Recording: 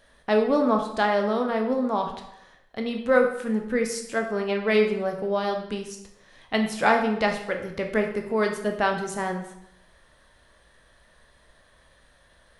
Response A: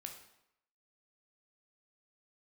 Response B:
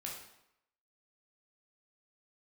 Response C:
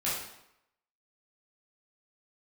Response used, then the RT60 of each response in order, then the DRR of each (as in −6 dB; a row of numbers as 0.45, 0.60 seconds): A; 0.80, 0.80, 0.80 seconds; 3.0, −3.0, −9.5 decibels